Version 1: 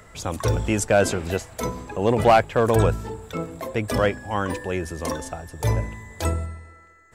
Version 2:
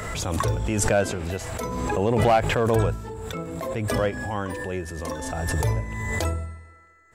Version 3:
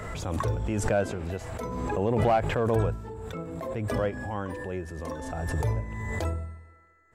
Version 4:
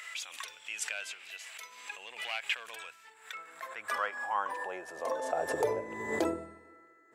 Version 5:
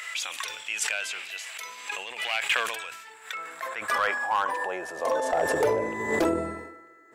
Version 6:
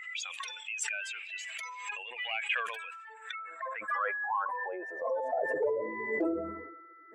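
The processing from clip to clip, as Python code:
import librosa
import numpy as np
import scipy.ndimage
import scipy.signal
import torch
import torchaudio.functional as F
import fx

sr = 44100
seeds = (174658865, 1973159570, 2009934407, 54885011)

y1 = fx.hpss(x, sr, part='harmonic', gain_db=5)
y1 = fx.pre_swell(y1, sr, db_per_s=25.0)
y1 = y1 * librosa.db_to_amplitude(-7.5)
y2 = fx.high_shelf(y1, sr, hz=2400.0, db=-9.0)
y2 = y2 * librosa.db_to_amplitude(-3.5)
y3 = fx.filter_sweep_highpass(y2, sr, from_hz=2600.0, to_hz=310.0, start_s=2.81, end_s=6.24, q=2.3)
y4 = np.clip(y3, -10.0 ** (-25.5 / 20.0), 10.0 ** (-25.5 / 20.0))
y4 = fx.sustainer(y4, sr, db_per_s=52.0)
y4 = y4 * librosa.db_to_amplitude(7.5)
y5 = fx.spec_expand(y4, sr, power=2.1)
y5 = fx.recorder_agc(y5, sr, target_db=-23.0, rise_db_per_s=11.0, max_gain_db=30)
y5 = y5 * librosa.db_to_amplitude(-6.0)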